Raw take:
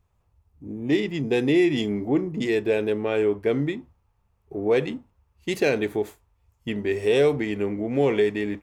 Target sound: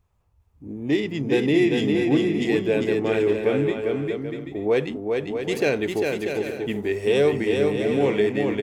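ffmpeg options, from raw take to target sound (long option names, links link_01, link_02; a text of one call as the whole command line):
ffmpeg -i in.wav -af "aecho=1:1:400|640|784|870.4|922.2:0.631|0.398|0.251|0.158|0.1" out.wav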